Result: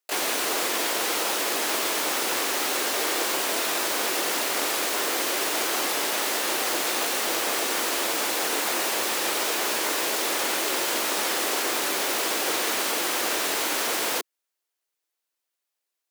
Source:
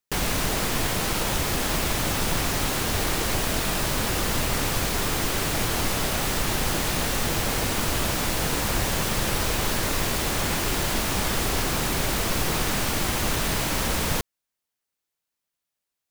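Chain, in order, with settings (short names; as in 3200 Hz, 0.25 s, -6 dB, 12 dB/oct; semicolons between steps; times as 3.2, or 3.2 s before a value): Chebyshev high-pass 330 Hz, order 3; harmoniser +7 st -3 dB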